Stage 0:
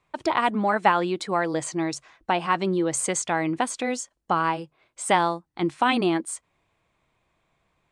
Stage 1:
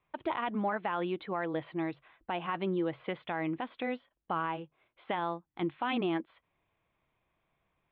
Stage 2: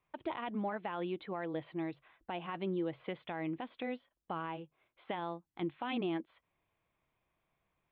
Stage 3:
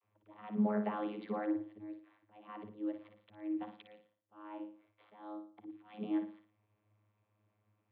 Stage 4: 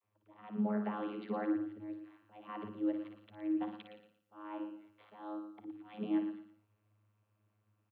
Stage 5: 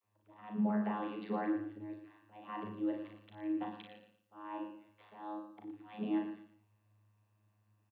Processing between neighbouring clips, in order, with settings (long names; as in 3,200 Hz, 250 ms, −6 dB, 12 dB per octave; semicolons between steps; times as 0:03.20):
Butterworth low-pass 3,600 Hz 72 dB per octave; brickwall limiter −15 dBFS, peak gain reduction 10 dB; level −7.5 dB
dynamic equaliser 1,300 Hz, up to −5 dB, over −47 dBFS, Q 1; level −3.5 dB
volume swells 526 ms; flutter between parallel walls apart 9.7 metres, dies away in 0.42 s; channel vocoder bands 32, saw 105 Hz; level +5.5 dB
speech leveller within 5 dB 2 s; repeating echo 115 ms, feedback 28%, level −9 dB; level +1 dB
double-tracking delay 37 ms −4 dB